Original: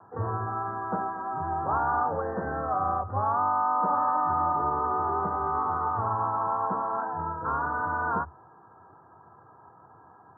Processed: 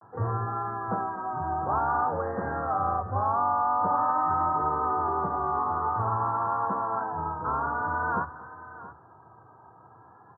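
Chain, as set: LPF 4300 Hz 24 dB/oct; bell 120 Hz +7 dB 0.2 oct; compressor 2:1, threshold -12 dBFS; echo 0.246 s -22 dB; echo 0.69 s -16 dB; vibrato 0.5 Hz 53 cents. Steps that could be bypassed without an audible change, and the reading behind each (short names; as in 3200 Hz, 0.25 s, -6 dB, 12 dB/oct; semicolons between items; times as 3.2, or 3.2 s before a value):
LPF 4300 Hz: input band ends at 1700 Hz; compressor, threshold -12 dBFS: input peak -14.5 dBFS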